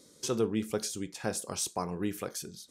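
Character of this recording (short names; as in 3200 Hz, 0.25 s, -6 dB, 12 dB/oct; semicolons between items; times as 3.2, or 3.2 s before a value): noise floor -60 dBFS; spectral tilt -4.0 dB/oct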